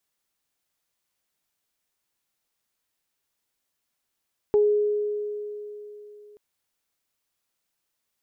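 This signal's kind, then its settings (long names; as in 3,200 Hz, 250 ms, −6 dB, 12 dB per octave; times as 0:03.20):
harmonic partials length 1.83 s, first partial 417 Hz, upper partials −16.5 dB, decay 3.42 s, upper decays 0.22 s, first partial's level −15 dB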